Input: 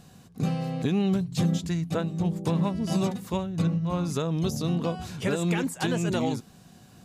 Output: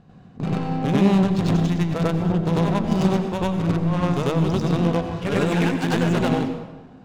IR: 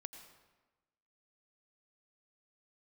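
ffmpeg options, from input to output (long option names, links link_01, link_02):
-filter_complex "[0:a]aeval=exprs='0.188*(cos(1*acos(clip(val(0)/0.188,-1,1)))-cos(1*PI/2))+0.0473*(cos(2*acos(clip(val(0)/0.188,-1,1)))-cos(2*PI/2))+0.0106*(cos(6*acos(clip(val(0)/0.188,-1,1)))-cos(6*PI/2))+0.0237*(cos(8*acos(clip(val(0)/0.188,-1,1)))-cos(8*PI/2))':channel_layout=same,adynamicsmooth=sensitivity=5:basefreq=2000,asplit=2[link_01][link_02];[1:a]atrim=start_sample=2205,adelay=95[link_03];[link_02][link_03]afir=irnorm=-1:irlink=0,volume=9dB[link_04];[link_01][link_04]amix=inputs=2:normalize=0"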